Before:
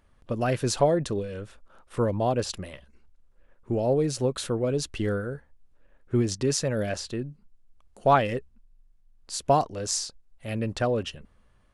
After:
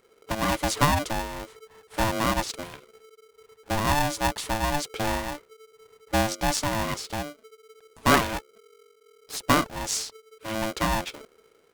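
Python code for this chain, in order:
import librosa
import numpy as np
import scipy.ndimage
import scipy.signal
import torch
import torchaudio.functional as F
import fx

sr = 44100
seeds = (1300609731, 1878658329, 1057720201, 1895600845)

y = fx.lower_of_two(x, sr, delay_ms=0.48, at=(8.21, 9.37))
y = y * np.sign(np.sin(2.0 * np.pi * 440.0 * np.arange(len(y)) / sr))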